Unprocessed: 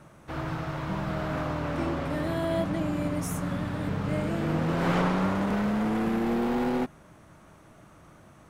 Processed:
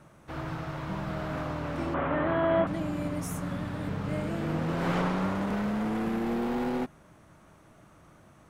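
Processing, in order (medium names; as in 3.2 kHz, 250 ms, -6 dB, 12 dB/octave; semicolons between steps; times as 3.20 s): 1.94–2.67 s: FFT filter 130 Hz 0 dB, 1.3 kHz +10 dB, 3.2 kHz +1 dB, 5 kHz -22 dB; trim -3 dB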